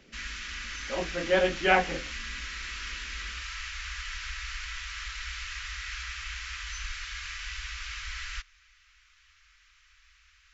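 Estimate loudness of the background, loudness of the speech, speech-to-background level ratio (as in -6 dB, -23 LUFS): -36.5 LUFS, -27.5 LUFS, 9.0 dB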